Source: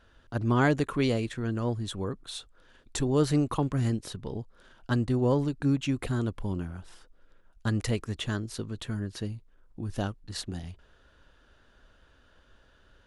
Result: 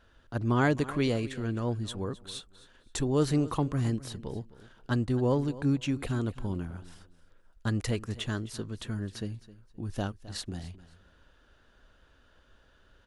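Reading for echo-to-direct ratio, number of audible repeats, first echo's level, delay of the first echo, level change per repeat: -17.5 dB, 2, -17.5 dB, 0.262 s, -12.5 dB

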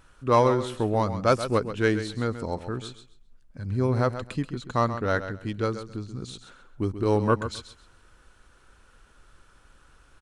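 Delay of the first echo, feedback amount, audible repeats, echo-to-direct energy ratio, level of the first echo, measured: 0.132 s, 20%, 2, -11.0 dB, -11.0 dB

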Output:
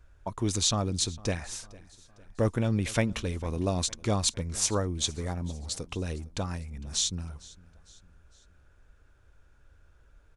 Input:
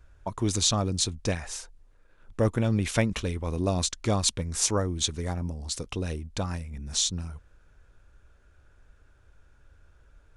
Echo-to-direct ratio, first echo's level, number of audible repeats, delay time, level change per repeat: -21.0 dB, -22.0 dB, 3, 0.455 s, -6.5 dB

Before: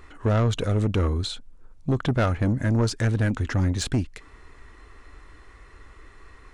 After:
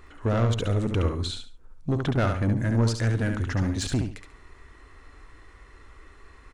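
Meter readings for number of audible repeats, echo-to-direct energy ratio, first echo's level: 3, -5.0 dB, -5.5 dB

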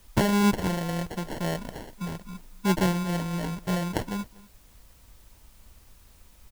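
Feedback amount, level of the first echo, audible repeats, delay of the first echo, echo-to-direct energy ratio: no steady repeat, -22.0 dB, 1, 0.242 s, -22.0 dB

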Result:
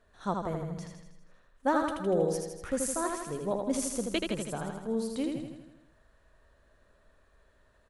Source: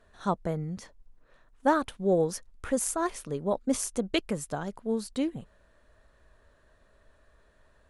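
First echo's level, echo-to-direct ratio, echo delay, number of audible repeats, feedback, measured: -4.0 dB, -2.0 dB, 80 ms, 7, 58%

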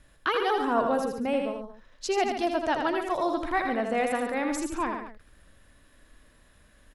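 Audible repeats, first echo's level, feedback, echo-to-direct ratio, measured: 3, -5.5 dB, no steady repeat, -3.5 dB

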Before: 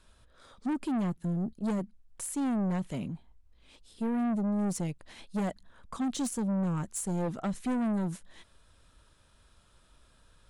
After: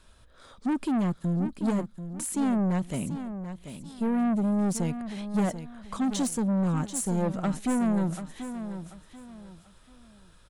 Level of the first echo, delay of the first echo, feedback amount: -10.5 dB, 0.737 s, 30%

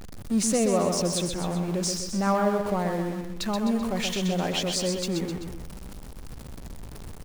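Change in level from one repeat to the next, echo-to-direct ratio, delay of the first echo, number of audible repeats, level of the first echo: -5.5 dB, -4.0 dB, 0.128 s, 3, -5.5 dB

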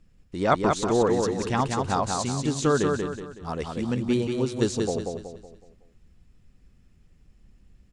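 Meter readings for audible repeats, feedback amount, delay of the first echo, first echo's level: 4, 40%, 0.186 s, -4.0 dB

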